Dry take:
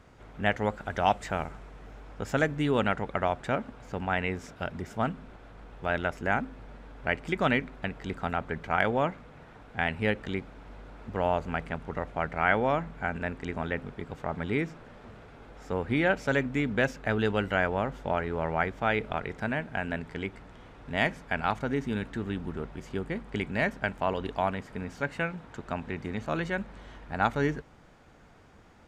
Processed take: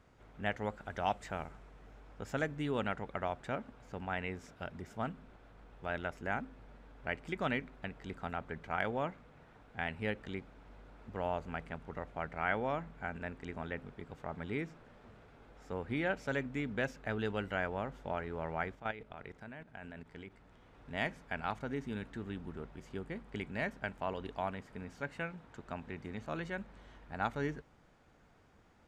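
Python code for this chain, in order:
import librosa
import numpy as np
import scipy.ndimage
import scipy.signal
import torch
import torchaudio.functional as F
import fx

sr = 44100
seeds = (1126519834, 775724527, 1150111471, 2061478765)

y = fx.level_steps(x, sr, step_db=13, at=(18.75, 20.73))
y = F.gain(torch.from_numpy(y), -9.0).numpy()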